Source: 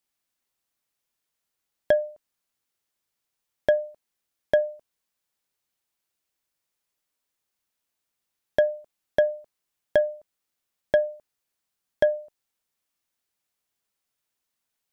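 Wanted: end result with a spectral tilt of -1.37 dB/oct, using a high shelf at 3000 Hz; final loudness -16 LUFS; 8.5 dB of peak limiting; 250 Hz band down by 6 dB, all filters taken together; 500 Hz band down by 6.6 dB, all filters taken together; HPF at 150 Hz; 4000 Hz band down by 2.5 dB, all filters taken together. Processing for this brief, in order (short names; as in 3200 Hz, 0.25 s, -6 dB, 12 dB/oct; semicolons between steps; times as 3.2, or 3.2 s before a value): HPF 150 Hz; bell 250 Hz -4.5 dB; bell 500 Hz -8 dB; high shelf 3000 Hz +5 dB; bell 4000 Hz -7 dB; gain +20 dB; limiter -1 dBFS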